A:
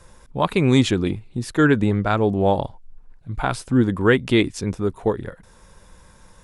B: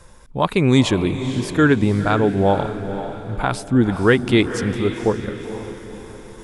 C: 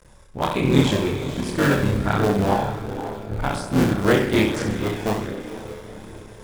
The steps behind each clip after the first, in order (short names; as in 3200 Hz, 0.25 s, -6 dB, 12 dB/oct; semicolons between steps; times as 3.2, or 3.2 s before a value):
reverse; upward compressor, threshold -38 dBFS; reverse; diffused feedback echo 0.491 s, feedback 46%, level -10 dB; gain +1.5 dB
cycle switcher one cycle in 3, muted; flutter echo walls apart 11.2 m, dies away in 0.63 s; chorus voices 2, 0.65 Hz, delay 29 ms, depth 1.3 ms